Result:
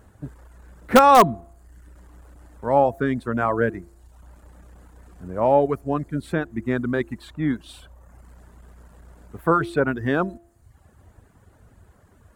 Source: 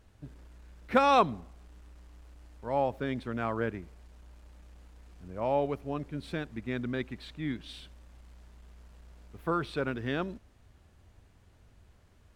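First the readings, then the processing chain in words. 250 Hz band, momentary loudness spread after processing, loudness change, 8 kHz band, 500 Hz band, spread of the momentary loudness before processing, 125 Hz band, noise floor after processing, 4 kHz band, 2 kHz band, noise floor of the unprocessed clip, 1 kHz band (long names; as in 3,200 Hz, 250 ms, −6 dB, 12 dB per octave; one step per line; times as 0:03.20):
+10.0 dB, 18 LU, +10.5 dB, can't be measured, +10.5 dB, 20 LU, +9.0 dB, −56 dBFS, +6.0 dB, +9.5 dB, −61 dBFS, +11.0 dB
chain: reverb reduction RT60 0.85 s
high-pass filter 70 Hz 6 dB per octave
flat-topped bell 3,600 Hz −10 dB
hum removal 341.7 Hz, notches 2
in parallel at −7.5 dB: wrap-around overflow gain 15.5 dB
on the sum: level +9 dB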